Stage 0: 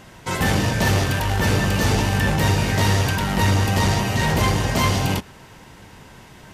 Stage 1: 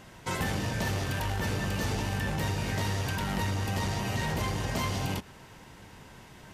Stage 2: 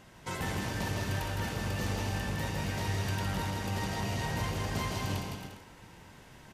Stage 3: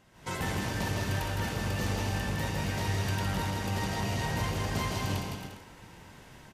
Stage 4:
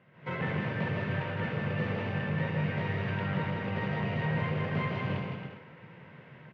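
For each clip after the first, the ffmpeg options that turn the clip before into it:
-af "acompressor=threshold=0.0891:ratio=6,volume=0.501"
-af "aecho=1:1:160|272|350.4|405.3|443.7:0.631|0.398|0.251|0.158|0.1,volume=0.562"
-af "dynaudnorm=f=120:g=3:m=2.99,volume=0.422"
-af "highpass=f=110:w=0.5412,highpass=f=110:w=1.3066,equalizer=f=150:t=q:w=4:g=8,equalizer=f=300:t=q:w=4:g=-5,equalizer=f=510:t=q:w=4:g=5,equalizer=f=820:t=q:w=4:g=-6,equalizer=f=2100:t=q:w=4:g=3,lowpass=f=2700:w=0.5412,lowpass=f=2700:w=1.3066"

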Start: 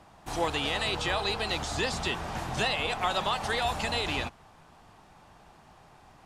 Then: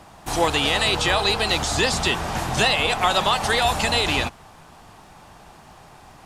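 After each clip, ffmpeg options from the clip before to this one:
-af "highshelf=f=6300:g=6.5,volume=2.66"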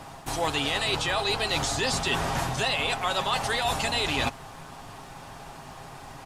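-af "aecho=1:1:7.4:0.41,areverse,acompressor=threshold=0.0447:ratio=6,areverse,volume=1.41"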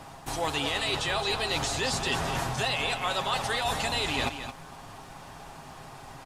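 -af "aecho=1:1:217:0.335,volume=0.75"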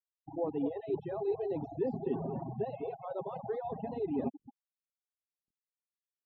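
-af "afftfilt=real='re*gte(hypot(re,im),0.0794)':imag='im*gte(hypot(re,im),0.0794)':win_size=1024:overlap=0.75,asuperpass=centerf=300:order=4:qfactor=1,aemphasis=mode=production:type=50fm,volume=1.68"

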